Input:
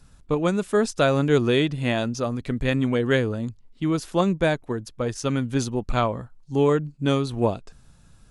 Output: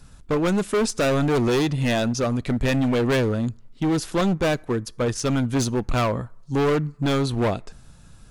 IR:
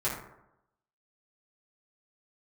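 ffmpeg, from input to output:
-filter_complex "[0:a]asoftclip=type=hard:threshold=0.0708,asplit=2[s0][s1];[s1]tiltshelf=f=1200:g=-7[s2];[1:a]atrim=start_sample=2205[s3];[s2][s3]afir=irnorm=-1:irlink=0,volume=0.0266[s4];[s0][s4]amix=inputs=2:normalize=0,volume=1.78"

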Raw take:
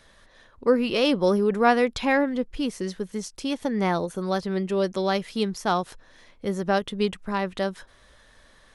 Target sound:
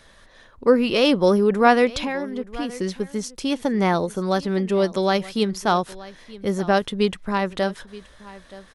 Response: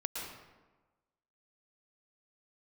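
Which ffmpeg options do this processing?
-filter_complex "[0:a]asettb=1/sr,asplit=3[s0][s1][s2];[s0]atrim=end=1.994[s3];[s1]atrim=start=1.99:end=2.79,asetpts=PTS-STARTPTS,afade=t=in:d=0.004:c=qsin,afade=t=out:st=0.796:d=0.004:c=qsin,acompressor=threshold=0.0282:ratio=3[s4];[s2]atrim=start=2.786[s5];[s3][s4]acrossfade=d=0.004:c1=hsin:c2=qsin[s6];[s6][s5]acrossfade=d=0.004:c1=qsin:c2=hsin,aecho=1:1:925:0.112,volume=1.58"

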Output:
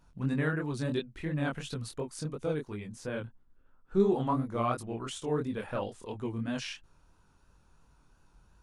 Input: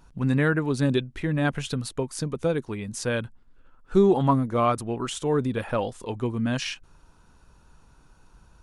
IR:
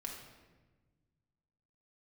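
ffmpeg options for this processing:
-filter_complex "[0:a]flanger=delay=19.5:depth=7.1:speed=2.9,asettb=1/sr,asplit=3[s0][s1][s2];[s0]atrim=end=2.874[s3];[s1]atrim=start=2.87:end=4,asetpts=PTS-STARTPTS,afade=t=in:d=0.004:c=qsin,afade=t=out:st=1.126:d=0.004:c=qsin,highshelf=f=2300:g=-9[s4];[s2]atrim=start=3.996[s5];[s3][s4]acrossfade=d=0.004:c1=hsin:c2=qsin[s6];[s6][s5]acrossfade=d=0.004:c1=qsin:c2=hsin,volume=0.562"

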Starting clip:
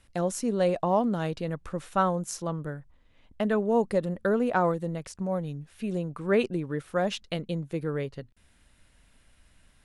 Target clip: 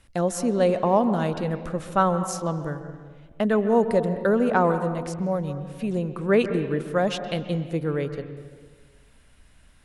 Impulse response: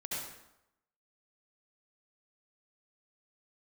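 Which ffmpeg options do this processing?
-filter_complex "[0:a]asplit=2[s0][s1];[1:a]atrim=start_sample=2205,asetrate=23373,aresample=44100,lowpass=2900[s2];[s1][s2]afir=irnorm=-1:irlink=0,volume=0.188[s3];[s0][s3]amix=inputs=2:normalize=0,volume=1.41"

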